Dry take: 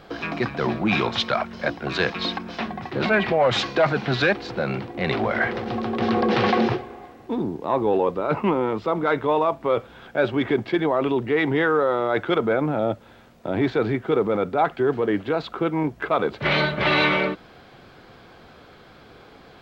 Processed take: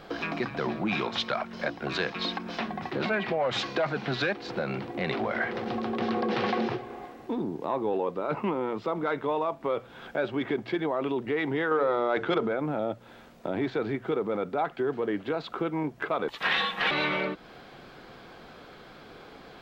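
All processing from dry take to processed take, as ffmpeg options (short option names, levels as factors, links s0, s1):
-filter_complex "[0:a]asettb=1/sr,asplit=3[s0][s1][s2];[s0]atrim=end=11.714[s3];[s1]atrim=start=11.71:end=12.48,asetpts=PTS-STARTPTS,afade=t=in:d=0.004:c=qsin,afade=t=out:st=0.766:d=0.004:c=qsin,lowpass=6200,acontrast=66,bandreject=f=50:t=h:w=6,bandreject=f=100:t=h:w=6,bandreject=f=150:t=h:w=6,bandreject=f=200:t=h:w=6,bandreject=f=250:t=h:w=6,bandreject=f=300:t=h:w=6,bandreject=f=350:t=h:w=6,bandreject=f=400:t=h:w=6,bandreject=f=450:t=h:w=6[s4];[s2]atrim=start=12.476[s5];[s3][s4]acrossfade=d=0.004:c1=hsin:c2=qsin[s6];[s6][s5]acrossfade=d=0.004:c1=qsin:c2=hsin,asettb=1/sr,asplit=3[s7][s8][s9];[s7]atrim=end=16.284[s10];[s8]atrim=start=16.28:end=16.91,asetpts=PTS-STARTPTS,afade=t=in:d=0.004:c=qsin,afade=t=out:st=0.626:d=0.004:c=qsin,highpass=f=750:w=0.5412,highpass=f=750:w=1.3066,highshelf=f=2200:g=12,afreqshift=-410[s11];[s9]atrim=start=16.906[s12];[s10][s11]acrossfade=d=0.004:c1=hsin:c2=qsin[s13];[s13][s12]acrossfade=d=0.004:c1=qsin:c2=hsin,equalizer=f=88:w=2:g=-8,bandreject=f=60:t=h:w=6,bandreject=f=120:t=h:w=6,acompressor=threshold=0.0282:ratio=2"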